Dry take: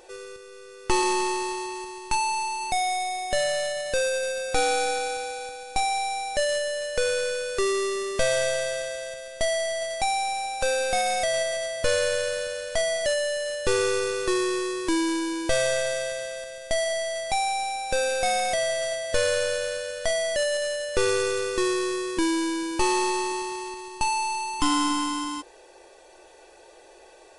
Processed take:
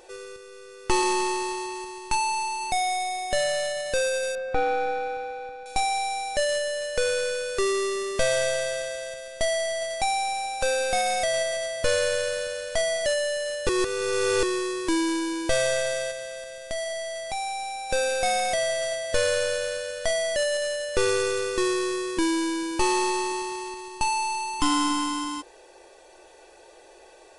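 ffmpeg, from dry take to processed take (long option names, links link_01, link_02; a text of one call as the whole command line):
ffmpeg -i in.wav -filter_complex "[0:a]asettb=1/sr,asplit=3[link_01][link_02][link_03];[link_01]atrim=end=4.354[link_04];[link_02]atrim=start=4.35:end=5.66,asetpts=PTS-STARTPTS,afade=type=in:duration=0.004:curve=qsin,afade=type=out:start_time=1.306:duration=0.004:curve=qsin,lowpass=1800[link_05];[link_03]atrim=start=5.656[link_06];[link_04][link_05]acrossfade=duration=0.004:curve1=hsin:curve2=qsin[link_07];[link_07][link_06]acrossfade=duration=0.004:curve1=qsin:curve2=hsin,asettb=1/sr,asplit=3[link_08][link_09][link_10];[link_08]atrim=end=16.114[link_11];[link_09]atrim=start=16.11:end=17.9,asetpts=PTS-STARTPTS,afade=type=in:duration=0.004:curve=qsin,afade=type=out:start_time=1.786:duration=0.004:curve=qsin,acompressor=threshold=-37dB:ratio=1.5:attack=3.2:release=140:knee=1:detection=peak[link_12];[link_10]atrim=start=17.896[link_13];[link_11][link_12]acrossfade=duration=0.004:curve1=hsin:curve2=qsin[link_14];[link_14][link_13]acrossfade=duration=0.004:curve1=qsin:curve2=hsin,asplit=3[link_15][link_16][link_17];[link_15]atrim=end=13.692[link_18];[link_16]atrim=start=13.688:end=14.432,asetpts=PTS-STARTPTS,areverse[link_19];[link_17]atrim=start=14.428[link_20];[link_18][link_19]acrossfade=duration=0.004:curve1=hsin:curve2=hsin[link_21];[link_21][link_20]acrossfade=duration=0.004:curve1=hsin:curve2=hsin" out.wav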